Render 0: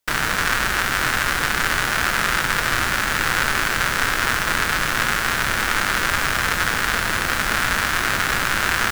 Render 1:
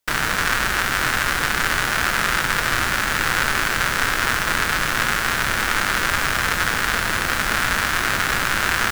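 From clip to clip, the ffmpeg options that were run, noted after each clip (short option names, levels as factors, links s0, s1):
-af anull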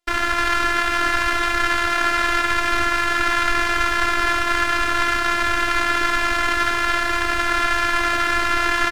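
-af "aemphasis=mode=reproduction:type=50fm,aecho=1:1:58.31|291.5:0.282|0.355,afftfilt=real='hypot(re,im)*cos(PI*b)':imag='0':win_size=512:overlap=0.75,volume=1.68"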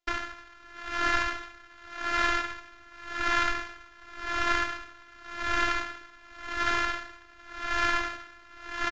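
-af "aresample=16000,aresample=44100,aeval=exprs='val(0)*pow(10,-28*(0.5-0.5*cos(2*PI*0.89*n/s))/20)':c=same,volume=0.531"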